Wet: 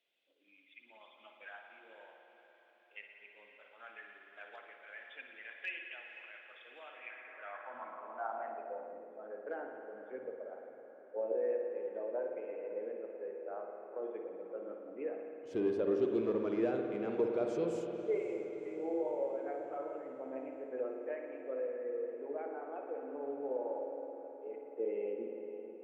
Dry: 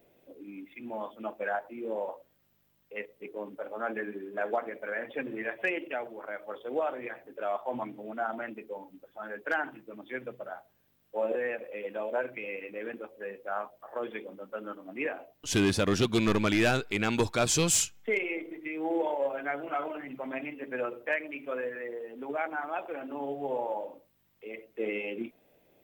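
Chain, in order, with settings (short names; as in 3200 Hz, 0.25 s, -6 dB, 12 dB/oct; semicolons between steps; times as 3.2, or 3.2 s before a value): diffused feedback echo 0.531 s, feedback 61%, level -13 dB; spring tank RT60 2.6 s, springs 53 ms, chirp 55 ms, DRR 2.5 dB; band-pass sweep 3300 Hz -> 450 Hz, 6.84–9.1; gain -3 dB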